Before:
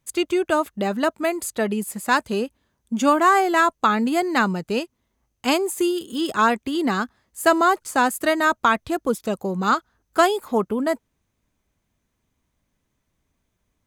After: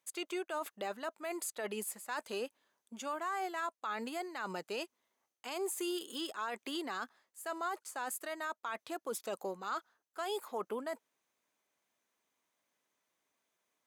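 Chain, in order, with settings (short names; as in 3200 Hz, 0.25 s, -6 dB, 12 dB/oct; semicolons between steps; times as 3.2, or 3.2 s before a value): HPF 500 Hz 12 dB/oct; reverse; compressor 10:1, threshold -28 dBFS, peak gain reduction 16.5 dB; reverse; limiter -25 dBFS, peak gain reduction 7.5 dB; gain -4 dB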